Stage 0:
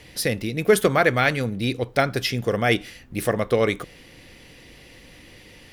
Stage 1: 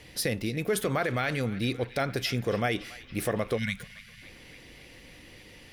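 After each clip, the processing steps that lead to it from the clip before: spectral delete 3.57–4.22, 250–1400 Hz; limiter -14.5 dBFS, peak gain reduction 10.5 dB; narrowing echo 0.281 s, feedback 76%, band-pass 2400 Hz, level -16 dB; gain -3.5 dB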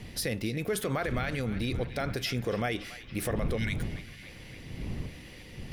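wind noise 150 Hz -37 dBFS; reverse; upward compressor, threshold -42 dBFS; reverse; limiter -21.5 dBFS, peak gain reduction 6.5 dB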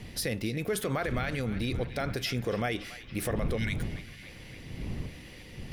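nothing audible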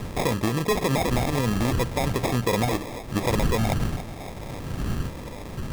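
in parallel at -1 dB: compressor, threshold -41 dBFS, peak gain reduction 14.5 dB; on the sum: sample-and-hold 30×; gain +6 dB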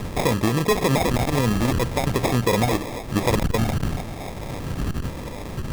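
core saturation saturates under 100 Hz; gain +4 dB

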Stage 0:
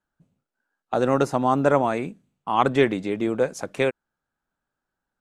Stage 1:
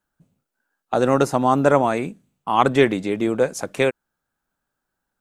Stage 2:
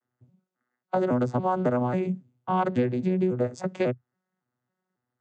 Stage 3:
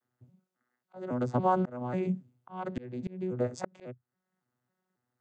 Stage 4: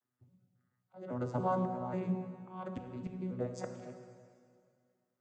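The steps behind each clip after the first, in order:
high shelf 8000 Hz +8 dB; gain +3 dB
arpeggiated vocoder bare fifth, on B2, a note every 0.275 s; compressor 6:1, threshold -21 dBFS, peak gain reduction 10.5 dB
auto swell 0.557 s
bin magnitudes rounded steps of 15 dB; plate-style reverb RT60 2.2 s, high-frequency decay 0.95×, DRR 5 dB; gain -6 dB

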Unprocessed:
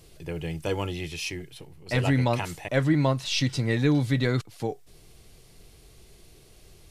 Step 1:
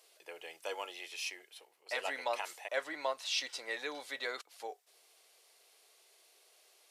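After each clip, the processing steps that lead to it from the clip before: HPF 550 Hz 24 dB/oct; gain -6.5 dB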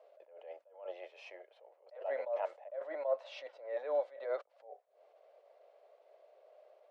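ladder band-pass 600 Hz, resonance 75%; bell 630 Hz +5 dB 0.38 oct; attack slew limiter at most 120 dB/s; gain +14.5 dB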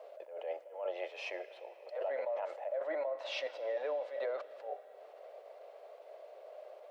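limiter -34 dBFS, peak gain reduction 11.5 dB; compressor, threshold -44 dBFS, peak gain reduction 7 dB; reverb RT60 4.6 s, pre-delay 5 ms, DRR 15.5 dB; gain +10.5 dB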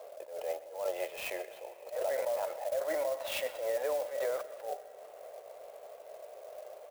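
echo 0.126 s -17 dB; clock jitter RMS 0.035 ms; gain +3.5 dB

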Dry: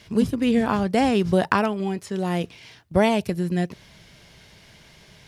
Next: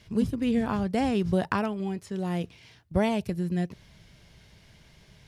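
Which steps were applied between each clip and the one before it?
low shelf 160 Hz +9.5 dB; gain -8 dB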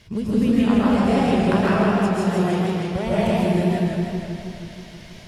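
compressor, threshold -27 dBFS, peak gain reduction 8.5 dB; reverb RT60 1.0 s, pre-delay 95 ms, DRR -6 dB; warbling echo 0.159 s, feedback 70%, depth 119 cents, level -3.5 dB; gain +4.5 dB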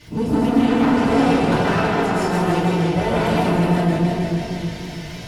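soft clip -23.5 dBFS, distortion -7 dB; crackle 38/s -43 dBFS; FDN reverb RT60 0.4 s, low-frequency decay 1×, high-frequency decay 0.75×, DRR -8.5 dB

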